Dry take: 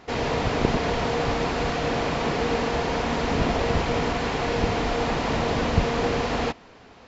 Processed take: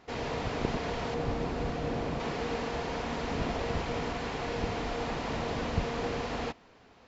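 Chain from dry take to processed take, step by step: 1.14–2.2 tilt shelf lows +4.5 dB, about 640 Hz; gain -9 dB

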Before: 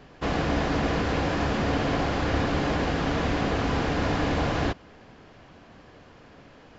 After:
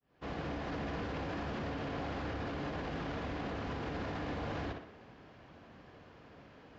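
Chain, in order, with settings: opening faded in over 0.68 s; HPF 45 Hz; air absorption 88 m; tape echo 62 ms, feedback 48%, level -10.5 dB, low-pass 4400 Hz; limiter -25.5 dBFS, peak gain reduction 11.5 dB; gain -5.5 dB

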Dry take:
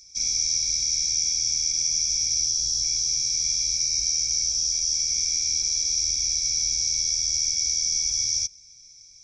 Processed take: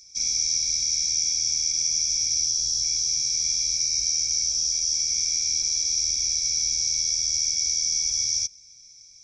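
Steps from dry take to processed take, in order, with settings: low shelf 93 Hz -5 dB

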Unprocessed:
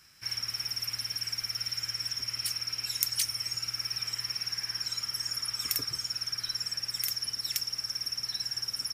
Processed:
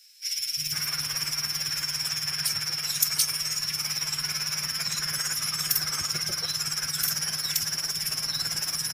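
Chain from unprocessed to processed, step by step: formant-preserving pitch shift +4.5 st; three bands offset in time highs, lows, mids 0.35/0.5 s, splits 290/2500 Hz; gain +6.5 dB

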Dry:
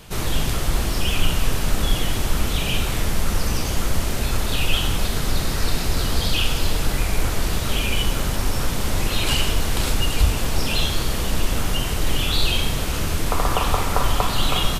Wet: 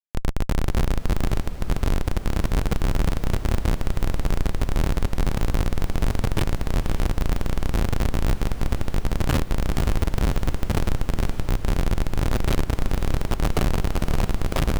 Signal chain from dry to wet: Schmitt trigger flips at -16 dBFS; diffused feedback echo 0.555 s, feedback 66%, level -12 dB

